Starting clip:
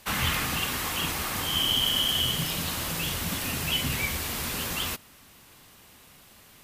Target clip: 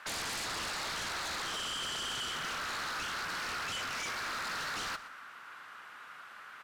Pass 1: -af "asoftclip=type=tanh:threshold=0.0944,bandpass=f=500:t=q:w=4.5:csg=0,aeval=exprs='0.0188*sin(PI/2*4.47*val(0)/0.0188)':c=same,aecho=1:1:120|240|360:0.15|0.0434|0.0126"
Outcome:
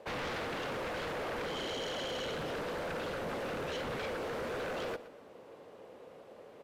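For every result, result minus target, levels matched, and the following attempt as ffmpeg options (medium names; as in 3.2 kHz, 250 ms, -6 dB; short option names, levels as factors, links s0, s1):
500 Hz band +14.0 dB; saturation: distortion -9 dB
-af "asoftclip=type=tanh:threshold=0.0944,bandpass=f=1400:t=q:w=4.5:csg=0,aeval=exprs='0.0188*sin(PI/2*4.47*val(0)/0.0188)':c=same,aecho=1:1:120|240|360:0.15|0.0434|0.0126"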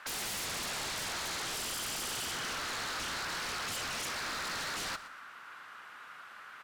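saturation: distortion -9 dB
-af "asoftclip=type=tanh:threshold=0.0355,bandpass=f=1400:t=q:w=4.5:csg=0,aeval=exprs='0.0188*sin(PI/2*4.47*val(0)/0.0188)':c=same,aecho=1:1:120|240|360:0.15|0.0434|0.0126"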